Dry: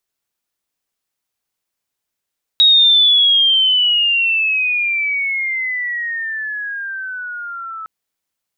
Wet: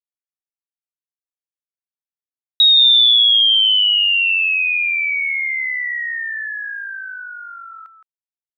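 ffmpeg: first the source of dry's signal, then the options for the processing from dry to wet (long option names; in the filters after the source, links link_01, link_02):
-f lavfi -i "aevalsrc='pow(10,(-6.5-19.5*t/5.26)/20)*sin(2*PI*3800*5.26/log(1300/3800)*(exp(log(1300/3800)*t/5.26)-1))':duration=5.26:sample_rate=44100"
-af "agate=range=-33dB:threshold=-24dB:ratio=3:detection=peak,highpass=frequency=1400:poles=1,aecho=1:1:167:0.355"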